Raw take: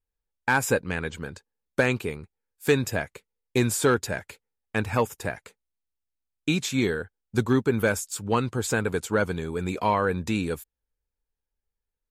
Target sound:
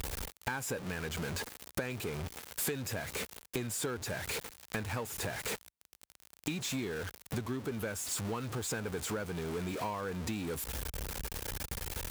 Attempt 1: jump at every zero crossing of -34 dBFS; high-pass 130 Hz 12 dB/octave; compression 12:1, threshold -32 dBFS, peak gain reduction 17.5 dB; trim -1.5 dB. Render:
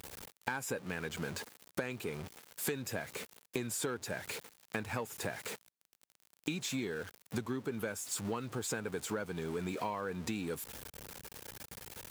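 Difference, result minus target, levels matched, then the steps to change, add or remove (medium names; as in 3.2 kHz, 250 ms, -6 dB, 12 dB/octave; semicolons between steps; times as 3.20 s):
jump at every zero crossing: distortion -8 dB; 125 Hz band -2.5 dB
change: jump at every zero crossing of -24.5 dBFS; change: high-pass 45 Hz 12 dB/octave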